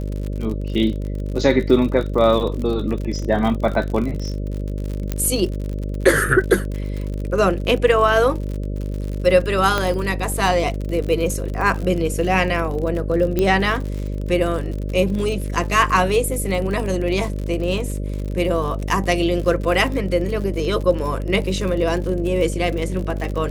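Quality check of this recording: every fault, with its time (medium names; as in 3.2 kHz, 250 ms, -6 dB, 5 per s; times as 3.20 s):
buzz 50 Hz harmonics 12 -25 dBFS
crackle 58 per s -26 dBFS
5.12 s: pop -9 dBFS
9.78 s: pop -6 dBFS
13.39 s: pop -7 dBFS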